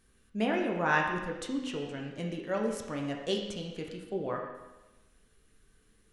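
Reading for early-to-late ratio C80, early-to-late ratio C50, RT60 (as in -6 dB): 6.0 dB, 4.0 dB, 1.1 s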